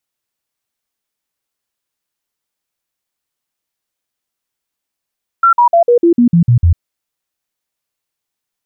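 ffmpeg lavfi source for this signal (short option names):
-f lavfi -i "aevalsrc='0.562*clip(min(mod(t,0.15),0.1-mod(t,0.15))/0.005,0,1)*sin(2*PI*1360*pow(2,-floor(t/0.15)/2)*mod(t,0.15))':d=1.35:s=44100"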